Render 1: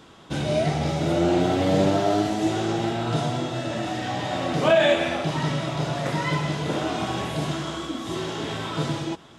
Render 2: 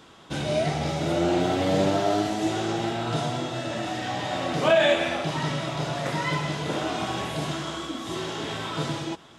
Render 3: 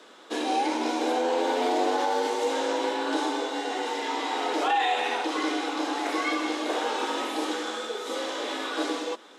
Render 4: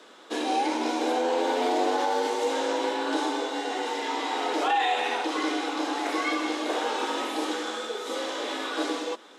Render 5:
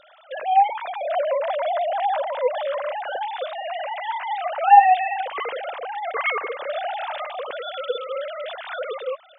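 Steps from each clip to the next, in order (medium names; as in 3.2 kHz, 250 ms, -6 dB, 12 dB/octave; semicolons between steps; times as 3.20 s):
bass shelf 480 Hz -4 dB
peak limiter -17 dBFS, peak gain reduction 6.5 dB; frequency shift +160 Hz
no audible change
formants replaced by sine waves; trim +4.5 dB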